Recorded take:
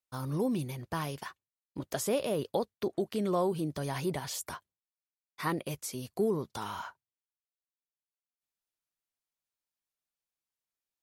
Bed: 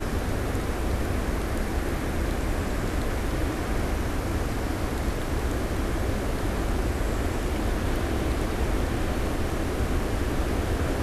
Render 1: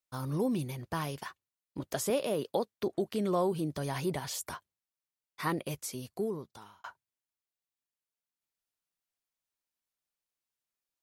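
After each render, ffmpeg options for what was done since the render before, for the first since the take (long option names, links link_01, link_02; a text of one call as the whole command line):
ffmpeg -i in.wav -filter_complex "[0:a]asettb=1/sr,asplit=3[link_01][link_02][link_03];[link_01]atrim=end=2.104[link_04];[link_02]atrim=start=2.1:end=2.75,asetpts=PTS-STARTPTS,afade=type=in:duration=0.004:curve=qsin,afade=type=out:start_time=0.646:duration=0.004:curve=qsin,highpass=160[link_05];[link_03]atrim=start=2.746[link_06];[link_04][link_05]acrossfade=duration=0.004:curve1=hsin:curve2=qsin[link_07];[link_07][link_06]acrossfade=duration=0.004:curve1=qsin:curve2=hsin,asplit=2[link_08][link_09];[link_08]atrim=end=6.84,asetpts=PTS-STARTPTS,afade=type=out:start_time=5.83:duration=1.01[link_10];[link_09]atrim=start=6.84,asetpts=PTS-STARTPTS,afade=type=in:duration=0.004:curve=hsin[link_11];[link_10][link_11]concat=n=2:v=0:a=1" out.wav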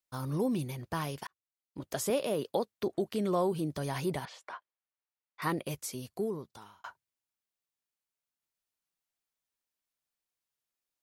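ffmpeg -i in.wav -filter_complex "[0:a]asettb=1/sr,asplit=3[link_01][link_02][link_03];[link_01]atrim=end=4.254[link_04];[link_02]atrim=start=4.25:end=5.42,asetpts=PTS-STARTPTS,afade=type=in:duration=0.004:curve=qsin,afade=type=out:start_time=1.166:duration=0.004:curve=qsin,highpass=590,lowpass=2400[link_05];[link_03]atrim=start=5.416[link_06];[link_04][link_05]acrossfade=duration=0.004:curve1=hsin:curve2=qsin[link_07];[link_07][link_06]acrossfade=duration=0.004:curve1=qsin:curve2=hsin,asplit=2[link_08][link_09];[link_08]atrim=end=1.27,asetpts=PTS-STARTPTS,afade=type=out:start_time=1.266:duration=0.004:curve=hsin[link_10];[link_09]atrim=start=1.27,asetpts=PTS-STARTPTS,afade=type=in:duration=0.77[link_11];[link_10][link_11]concat=n=2:v=0:a=1" out.wav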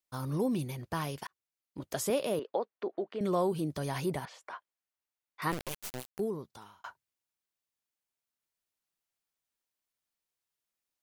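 ffmpeg -i in.wav -filter_complex "[0:a]asettb=1/sr,asplit=3[link_01][link_02][link_03];[link_01]atrim=end=2.394[link_04];[link_02]atrim=start=2.39:end=3.21,asetpts=PTS-STARTPTS,afade=type=in:duration=0.004:curve=qsin,afade=type=out:start_time=0.816:duration=0.004:curve=qsin,highpass=380,lowpass=2100[link_05];[link_03]atrim=start=3.206[link_06];[link_04][link_05]acrossfade=duration=0.004:curve1=hsin:curve2=qsin[link_07];[link_07][link_06]acrossfade=duration=0.004:curve1=qsin:curve2=hsin,asettb=1/sr,asplit=3[link_08][link_09][link_10];[link_08]atrim=end=4.064[link_11];[link_09]atrim=start=4.06:end=4.51,asetpts=PTS-STARTPTS,afade=type=in:duration=0.004:curve=qsin,afade=type=out:start_time=0.446:duration=0.004:curve=qsin,equalizer=frequency=3700:width_type=o:width=1.1:gain=-4[link_12];[link_10]atrim=start=4.506[link_13];[link_11][link_12]acrossfade=duration=0.004:curve1=hsin:curve2=qsin[link_14];[link_14][link_13]acrossfade=duration=0.004:curve1=qsin:curve2=hsin,asplit=3[link_15][link_16][link_17];[link_15]afade=type=out:start_time=5.51:duration=0.02[link_18];[link_16]acrusher=bits=3:dc=4:mix=0:aa=0.000001,afade=type=in:start_time=5.51:duration=0.02,afade=type=out:start_time=6.18:duration=0.02[link_19];[link_17]afade=type=in:start_time=6.18:duration=0.02[link_20];[link_18][link_19][link_20]amix=inputs=3:normalize=0" out.wav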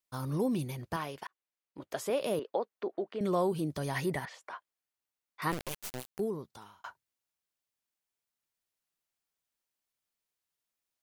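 ffmpeg -i in.wav -filter_complex "[0:a]asettb=1/sr,asplit=3[link_01][link_02][link_03];[link_01]atrim=end=0.964[link_04];[link_02]atrim=start=0.96:end=2.21,asetpts=PTS-STARTPTS,afade=type=in:duration=0.004:curve=qsin,afade=type=out:start_time=1.246:duration=0.004:curve=qsin,bass=frequency=250:gain=-10,treble=frequency=4000:gain=-8[link_05];[link_03]atrim=start=2.206[link_06];[link_04][link_05]acrossfade=duration=0.004:curve1=hsin:curve2=qsin[link_07];[link_07][link_06]acrossfade=duration=0.004:curve1=qsin:curve2=hsin,asettb=1/sr,asplit=3[link_08][link_09][link_10];[link_08]atrim=end=3.954[link_11];[link_09]atrim=start=3.95:end=4.35,asetpts=PTS-STARTPTS,afade=type=in:duration=0.004:curve=qsin,afade=type=out:start_time=0.396:duration=0.004:curve=qsin,equalizer=frequency=1900:width=6.8:gain=13[link_12];[link_10]atrim=start=4.346[link_13];[link_11][link_12]acrossfade=duration=0.004:curve1=hsin:curve2=qsin[link_14];[link_14][link_13]acrossfade=duration=0.004:curve1=qsin:curve2=hsin" out.wav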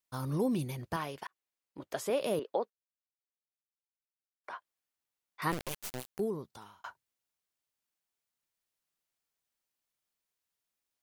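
ffmpeg -i in.wav -filter_complex "[0:a]asplit=3[link_01][link_02][link_03];[link_01]atrim=end=2.7,asetpts=PTS-STARTPTS,afade=type=out:start_time=2.696:duration=0.004:curve=hsin[link_04];[link_02]atrim=start=2.7:end=4.44,asetpts=PTS-STARTPTS,volume=0[link_05];[link_03]atrim=start=4.44,asetpts=PTS-STARTPTS,afade=type=in:duration=0.004:curve=hsin[link_06];[link_04][link_05][link_06]concat=n=3:v=0:a=1" out.wav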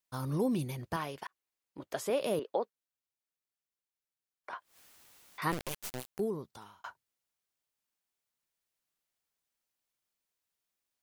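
ffmpeg -i in.wav -filter_complex "[0:a]asettb=1/sr,asplit=3[link_01][link_02][link_03];[link_01]atrim=end=4.534[link_04];[link_02]atrim=start=4.53:end=5.68,asetpts=PTS-STARTPTS,afade=type=in:duration=0.004:curve=qsin,afade=type=out:start_time=1.146:duration=0.004:curve=qsin,acompressor=mode=upward:threshold=-36dB:ratio=2.5:attack=3.2:release=140:knee=2.83:detection=peak[link_05];[link_03]atrim=start=5.676[link_06];[link_04][link_05]acrossfade=duration=0.004:curve1=hsin:curve2=qsin[link_07];[link_07][link_06]acrossfade=duration=0.004:curve1=qsin:curve2=hsin" out.wav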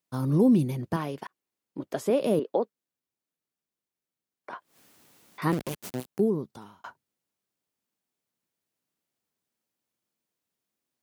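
ffmpeg -i in.wav -af "highpass=60,equalizer=frequency=230:width=0.52:gain=12" out.wav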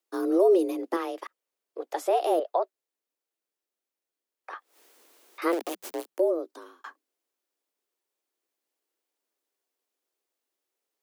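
ffmpeg -i in.wav -af "afreqshift=170" out.wav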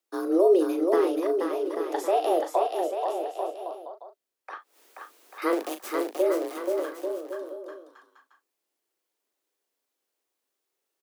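ffmpeg -i in.wav -filter_complex "[0:a]asplit=2[link_01][link_02];[link_02]adelay=38,volume=-9dB[link_03];[link_01][link_03]amix=inputs=2:normalize=0,asplit=2[link_04][link_05];[link_05]aecho=0:1:480|840|1110|1312|1464:0.631|0.398|0.251|0.158|0.1[link_06];[link_04][link_06]amix=inputs=2:normalize=0" out.wav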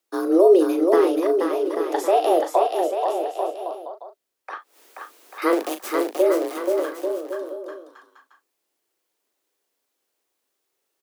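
ffmpeg -i in.wav -af "volume=5.5dB" out.wav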